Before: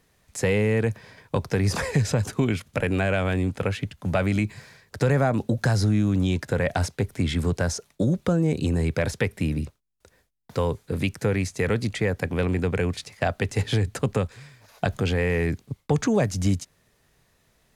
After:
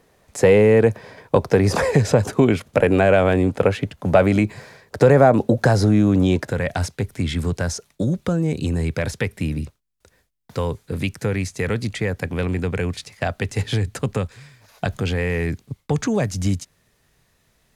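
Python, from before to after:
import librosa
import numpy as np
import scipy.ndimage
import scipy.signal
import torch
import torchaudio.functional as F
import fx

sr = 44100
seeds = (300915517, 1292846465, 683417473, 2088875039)

y = fx.peak_eq(x, sr, hz=540.0, db=fx.steps((0.0, 9.5), (6.5, -2.0)), octaves=2.4)
y = y * 10.0 ** (2.0 / 20.0)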